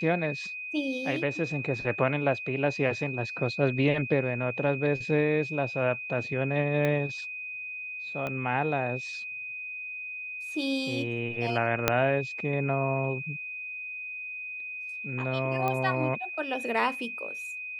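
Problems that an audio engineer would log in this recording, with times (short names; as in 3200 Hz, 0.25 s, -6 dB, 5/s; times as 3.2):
tone 2500 Hz -35 dBFS
6.85 pop -16 dBFS
8.27 pop -20 dBFS
11.88 pop -5 dBFS
15.68 pop -16 dBFS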